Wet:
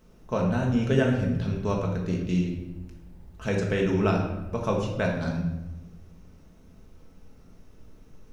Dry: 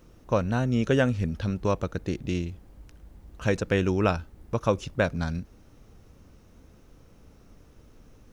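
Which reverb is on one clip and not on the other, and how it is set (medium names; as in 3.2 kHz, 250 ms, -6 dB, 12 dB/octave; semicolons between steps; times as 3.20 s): simulated room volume 470 m³, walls mixed, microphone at 1.5 m; trim -4.5 dB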